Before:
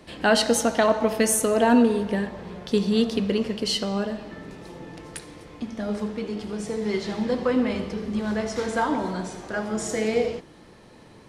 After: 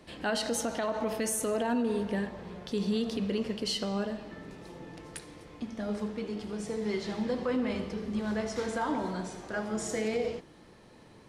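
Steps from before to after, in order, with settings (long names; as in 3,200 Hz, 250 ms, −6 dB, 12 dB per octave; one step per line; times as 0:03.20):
brickwall limiter −16.5 dBFS, peak gain reduction 9 dB
level −5.5 dB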